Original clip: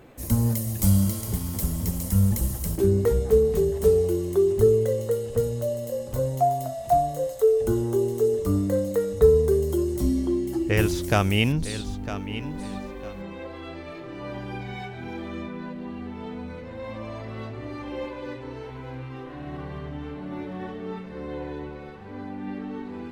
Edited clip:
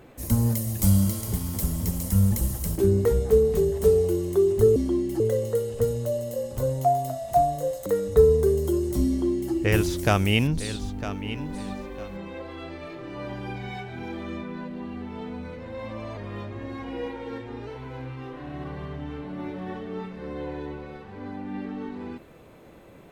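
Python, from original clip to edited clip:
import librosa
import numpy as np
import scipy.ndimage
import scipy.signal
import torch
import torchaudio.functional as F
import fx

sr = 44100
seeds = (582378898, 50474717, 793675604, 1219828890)

y = fx.edit(x, sr, fx.cut(start_s=7.42, length_s=1.49),
    fx.duplicate(start_s=10.14, length_s=0.44, to_s=4.76),
    fx.speed_span(start_s=17.22, length_s=1.38, speed=0.92), tone=tone)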